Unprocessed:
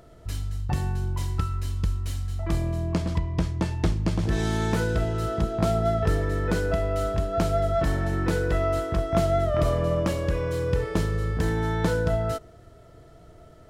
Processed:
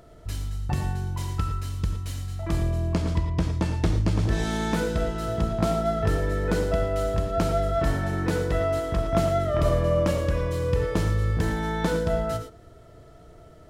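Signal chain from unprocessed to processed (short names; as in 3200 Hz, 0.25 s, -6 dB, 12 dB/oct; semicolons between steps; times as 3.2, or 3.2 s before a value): non-linear reverb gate 0.13 s rising, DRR 7 dB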